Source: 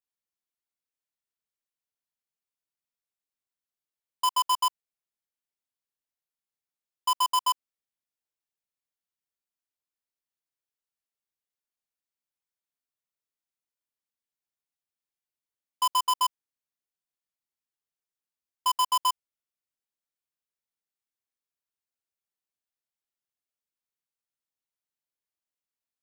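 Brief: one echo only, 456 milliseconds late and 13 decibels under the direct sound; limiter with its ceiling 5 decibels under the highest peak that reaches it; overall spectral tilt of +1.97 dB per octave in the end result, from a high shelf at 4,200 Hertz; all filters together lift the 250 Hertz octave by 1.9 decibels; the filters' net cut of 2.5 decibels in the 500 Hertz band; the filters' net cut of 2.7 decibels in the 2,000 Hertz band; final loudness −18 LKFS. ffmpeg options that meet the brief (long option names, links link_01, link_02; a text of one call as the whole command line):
ffmpeg -i in.wav -af "equalizer=frequency=250:width_type=o:gain=6.5,equalizer=frequency=500:width_type=o:gain=-5.5,equalizer=frequency=2000:width_type=o:gain=-6.5,highshelf=frequency=4200:gain=8,alimiter=limit=-17.5dB:level=0:latency=1,aecho=1:1:456:0.224,volume=13dB" out.wav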